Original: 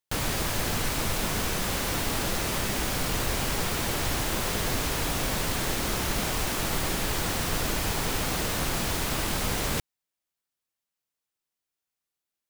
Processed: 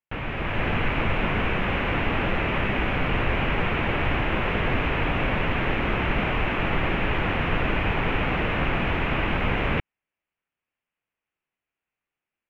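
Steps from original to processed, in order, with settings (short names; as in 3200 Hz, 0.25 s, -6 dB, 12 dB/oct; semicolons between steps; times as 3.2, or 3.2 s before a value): resonant high shelf 3500 Hz -10.5 dB, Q 3; AGC gain up to 7 dB; air absorption 310 m; gain -1.5 dB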